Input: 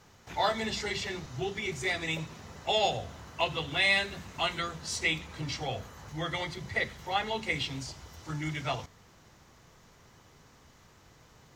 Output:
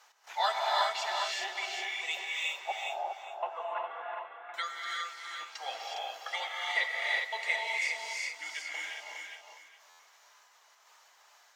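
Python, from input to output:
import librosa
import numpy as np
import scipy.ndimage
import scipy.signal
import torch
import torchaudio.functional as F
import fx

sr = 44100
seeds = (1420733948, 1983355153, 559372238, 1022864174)

y = scipy.signal.sosfilt(scipy.signal.butter(4, 700.0, 'highpass', fs=sr, output='sos'), x)
y = fx.dereverb_blind(y, sr, rt60_s=1.2)
y = fx.lowpass(y, sr, hz=1600.0, slope=24, at=(2.47, 4.54))
y = fx.step_gate(y, sr, bpm=127, pattern='x.xxx...x', floor_db=-24.0, edge_ms=4.5)
y = fx.echo_feedback(y, sr, ms=409, feedback_pct=25, wet_db=-5)
y = fx.rev_gated(y, sr, seeds[0], gate_ms=390, shape='rising', drr_db=-3.0)
y = fx.buffer_glitch(y, sr, at_s=(9.89,), block=512, repeats=8)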